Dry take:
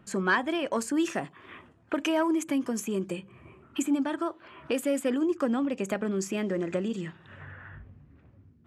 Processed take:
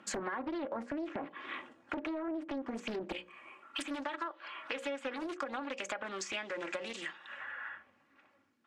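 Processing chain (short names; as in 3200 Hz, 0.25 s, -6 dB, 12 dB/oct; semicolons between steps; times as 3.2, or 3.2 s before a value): HPF 330 Hz 12 dB/oct, from 3.12 s 800 Hz; notches 60/120/180/240/300/360/420/480/540/600 Hz; treble ducked by the level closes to 1200 Hz, closed at -28.5 dBFS; LPF 8900 Hz; bell 560 Hz -2.5 dB 1.7 oct; comb 3.6 ms, depth 48%; limiter -26.5 dBFS, peak gain reduction 8.5 dB; compressor 8:1, threshold -40 dBFS, peak gain reduction 11 dB; Doppler distortion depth 0.8 ms; gain +5.5 dB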